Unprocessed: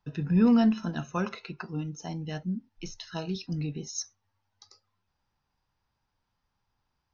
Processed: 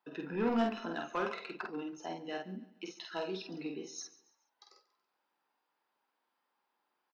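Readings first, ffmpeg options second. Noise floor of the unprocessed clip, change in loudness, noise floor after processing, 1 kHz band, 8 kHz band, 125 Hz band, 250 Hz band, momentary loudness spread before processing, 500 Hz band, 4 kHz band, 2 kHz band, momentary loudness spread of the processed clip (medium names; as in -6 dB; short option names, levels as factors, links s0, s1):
-81 dBFS, -9.0 dB, -83 dBFS, -1.0 dB, no reading, -18.5 dB, -11.5 dB, 17 LU, -1.5 dB, -4.5 dB, -0.5 dB, 13 LU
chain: -filter_complex "[0:a]highpass=f=300:w=0.5412,highpass=f=300:w=1.3066,equalizer=f=6000:w=1.3:g=-12,asoftclip=type=tanh:threshold=0.0447,asplit=2[s0][s1];[s1]adelay=48,volume=0.668[s2];[s0][s2]amix=inputs=2:normalize=0,asplit=2[s3][s4];[s4]aecho=0:1:141|282|423:0.112|0.0438|0.0171[s5];[s3][s5]amix=inputs=2:normalize=0"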